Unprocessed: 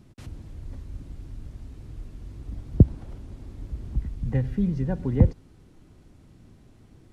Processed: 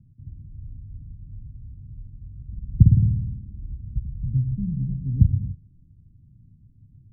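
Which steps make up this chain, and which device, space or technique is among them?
2.51–3.74 s: flutter echo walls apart 9.4 m, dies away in 1.1 s; the neighbour's flat through the wall (low-pass 200 Hz 24 dB/octave; peaking EQ 110 Hz +6.5 dB 0.89 oct); gated-style reverb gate 310 ms flat, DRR 7.5 dB; trim -2.5 dB

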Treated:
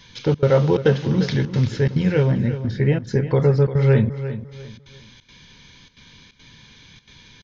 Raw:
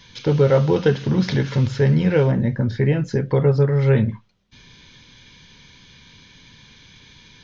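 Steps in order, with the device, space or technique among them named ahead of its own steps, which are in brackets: 1.07–2.85 s: peaking EQ 740 Hz -4.5 dB 1.9 oct; trance gate with a delay (trance gate "xxxx.xxxx.xxx" 176 bpm -24 dB; feedback delay 348 ms, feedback 30%, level -12 dB)

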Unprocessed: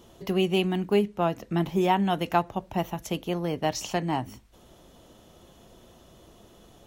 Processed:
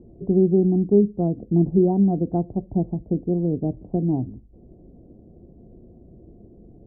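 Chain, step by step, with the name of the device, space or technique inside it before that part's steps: 3.45–4.04 s: dynamic bell 840 Hz, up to -4 dB, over -38 dBFS, Q 2.1; under water (low-pass 400 Hz 24 dB/octave; peaking EQ 720 Hz +8 dB 0.24 oct); trim +8.5 dB

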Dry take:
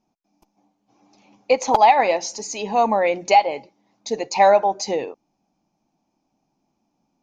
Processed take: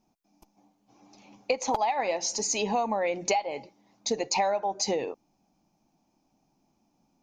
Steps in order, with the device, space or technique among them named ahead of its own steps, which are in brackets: ASMR close-microphone chain (bass shelf 110 Hz +5 dB; compression 8:1, threshold -24 dBFS, peak gain reduction 15 dB; treble shelf 6.4 kHz +5.5 dB)

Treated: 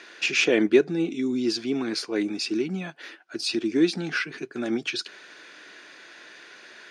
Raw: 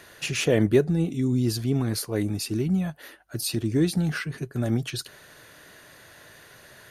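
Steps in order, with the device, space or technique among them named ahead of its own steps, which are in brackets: television speaker (cabinet simulation 230–7000 Hz, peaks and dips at 340 Hz +5 dB, 590 Hz -4 dB, 1.5 kHz +5 dB, 2.4 kHz +9 dB, 3.5 kHz +4 dB, 5.1 kHz +5 dB)

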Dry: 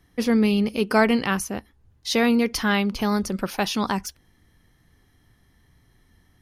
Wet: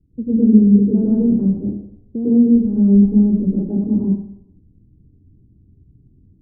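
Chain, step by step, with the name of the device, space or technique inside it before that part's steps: next room (low-pass 320 Hz 24 dB/octave; reverberation RT60 0.75 s, pre-delay 95 ms, DRR -8 dB); trim +1.5 dB

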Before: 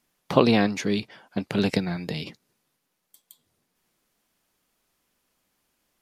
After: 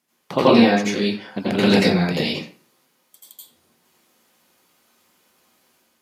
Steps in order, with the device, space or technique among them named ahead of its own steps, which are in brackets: far laptop microphone (reverberation RT60 0.40 s, pre-delay 79 ms, DRR -8 dB; high-pass 140 Hz 12 dB/octave; level rider gain up to 5 dB); trim -1 dB

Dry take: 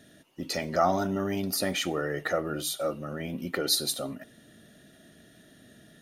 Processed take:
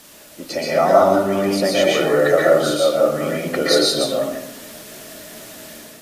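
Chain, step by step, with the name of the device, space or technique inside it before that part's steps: filmed off a television (band-pass 190–7000 Hz; peaking EQ 570 Hz +8.5 dB 0.46 oct; reverberation RT60 0.75 s, pre-delay 116 ms, DRR -4 dB; white noise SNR 22 dB; level rider gain up to 5.5 dB; trim +1 dB; AAC 48 kbps 32 kHz)

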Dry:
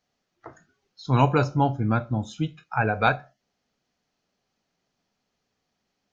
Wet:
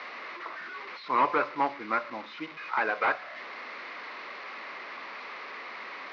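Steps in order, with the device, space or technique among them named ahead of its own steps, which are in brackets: digital answering machine (band-pass 320–3200 Hz; one-bit delta coder 32 kbps, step -36 dBFS; cabinet simulation 400–4000 Hz, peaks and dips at 440 Hz -3 dB, 730 Hz -7 dB, 1.1 kHz +9 dB, 2.1 kHz +9 dB, 3.2 kHz -7 dB)

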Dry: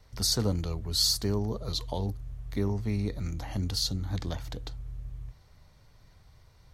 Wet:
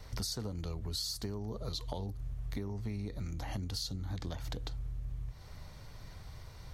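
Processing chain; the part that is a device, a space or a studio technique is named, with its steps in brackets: serial compression, leveller first (compression 2:1, threshold -34 dBFS, peak gain reduction 7 dB; compression 5:1, threshold -45 dBFS, peak gain reduction 15 dB); trim +8.5 dB

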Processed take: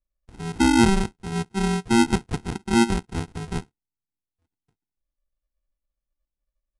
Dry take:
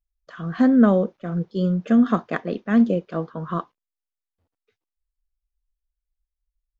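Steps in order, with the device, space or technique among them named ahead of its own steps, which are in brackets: crushed at another speed (playback speed 2×; sample-and-hold 38×; playback speed 0.5×); trim -2 dB

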